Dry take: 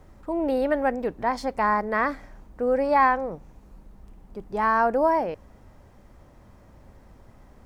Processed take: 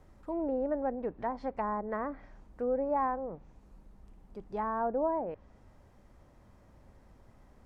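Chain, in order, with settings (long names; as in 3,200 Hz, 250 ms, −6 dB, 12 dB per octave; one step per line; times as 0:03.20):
treble cut that deepens with the level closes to 840 Hz, closed at −20.5 dBFS
level −7.5 dB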